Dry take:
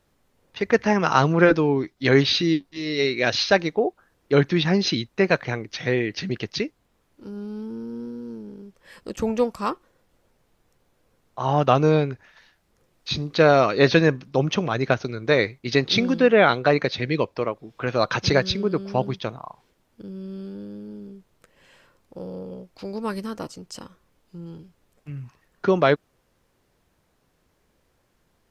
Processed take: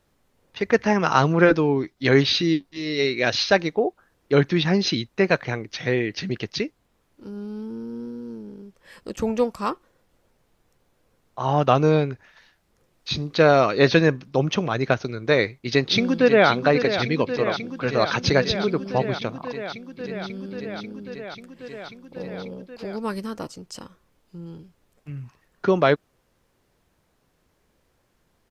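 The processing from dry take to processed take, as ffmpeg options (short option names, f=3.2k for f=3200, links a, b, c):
-filter_complex "[0:a]asplit=2[a][b];[b]afade=t=in:st=15.57:d=0.01,afade=t=out:st=16.48:d=0.01,aecho=0:1:540|1080|1620|2160|2700|3240|3780|4320|4860|5400|5940|6480:0.334965|0.284721|0.242013|0.205711|0.174854|0.148626|0.126332|0.107382|0.0912749|0.0775837|0.0659461|0.0560542[c];[a][c]amix=inputs=2:normalize=0"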